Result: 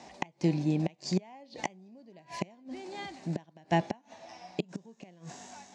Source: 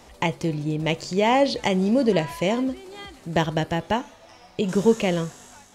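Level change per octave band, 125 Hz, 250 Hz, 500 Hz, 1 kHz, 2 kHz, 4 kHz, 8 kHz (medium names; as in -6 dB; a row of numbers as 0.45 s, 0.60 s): -7.0 dB, -10.0 dB, -16.0 dB, -12.0 dB, -12.5 dB, -13.5 dB, -9.5 dB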